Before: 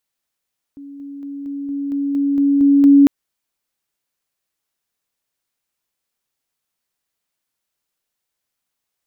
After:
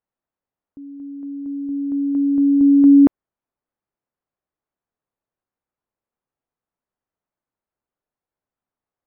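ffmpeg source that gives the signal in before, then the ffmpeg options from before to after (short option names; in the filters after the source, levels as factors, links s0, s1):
-f lavfi -i "aevalsrc='pow(10,(-32.5+3*floor(t/0.23))/20)*sin(2*PI*281*t)':d=2.3:s=44100"
-af "lowpass=1100"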